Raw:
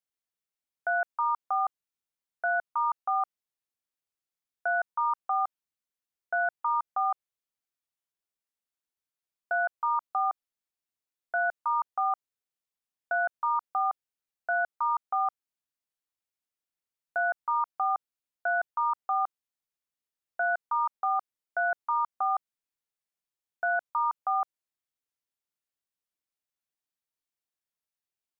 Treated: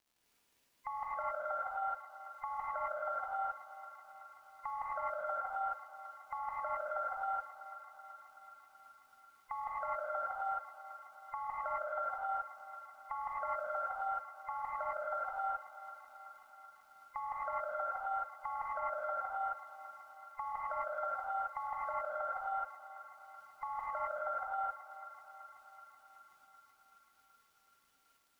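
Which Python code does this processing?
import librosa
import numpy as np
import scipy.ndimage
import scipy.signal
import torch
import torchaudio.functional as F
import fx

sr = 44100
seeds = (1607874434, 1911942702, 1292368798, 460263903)

p1 = fx.band_invert(x, sr, width_hz=500)
p2 = fx.over_compress(p1, sr, threshold_db=-33.0, ratio=-0.5)
p3 = fx.dmg_crackle(p2, sr, seeds[0], per_s=130.0, level_db=-57.0)
p4 = p3 + fx.echo_thinned(p3, sr, ms=379, feedback_pct=78, hz=610.0, wet_db=-13, dry=0)
p5 = fx.rev_gated(p4, sr, seeds[1], gate_ms=290, shape='rising', drr_db=-6.5)
y = p5 * librosa.db_to_amplitude(-5.5)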